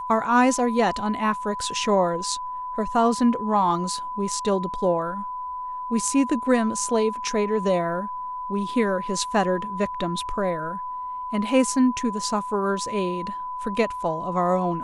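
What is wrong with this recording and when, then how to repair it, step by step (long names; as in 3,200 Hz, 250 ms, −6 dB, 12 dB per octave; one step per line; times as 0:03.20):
whistle 1,000 Hz −29 dBFS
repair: notch filter 1,000 Hz, Q 30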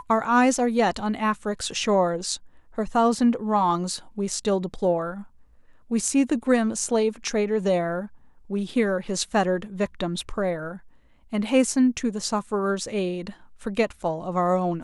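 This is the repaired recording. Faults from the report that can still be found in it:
none of them is left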